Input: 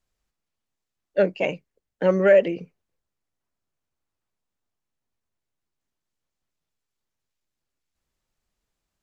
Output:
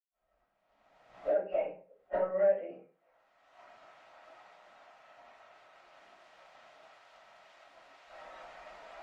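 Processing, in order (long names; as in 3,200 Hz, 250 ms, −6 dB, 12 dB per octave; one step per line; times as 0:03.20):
spectral magnitudes quantised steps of 15 dB
camcorder AGC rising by 28 dB per second
drawn EQ curve 370 Hz 0 dB, 750 Hz +12 dB, 1,100 Hz +5 dB
downward compressor 8 to 1, threshold −43 dBFS, peak gain reduction 36 dB
high-pass filter 270 Hz 6 dB per octave, from 0:02.60 1,200 Hz
wave folding −33.5 dBFS
low-pass filter 1,500 Hz 12 dB per octave
convolution reverb RT60 0.45 s, pre-delay 100 ms
multiband upward and downward expander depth 40%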